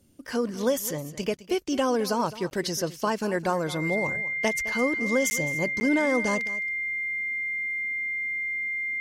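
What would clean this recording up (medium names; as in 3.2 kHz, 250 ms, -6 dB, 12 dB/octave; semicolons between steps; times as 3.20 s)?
band-stop 2.1 kHz, Q 30; interpolate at 1.37/2.50/5.30/5.80 s, 10 ms; inverse comb 212 ms -16 dB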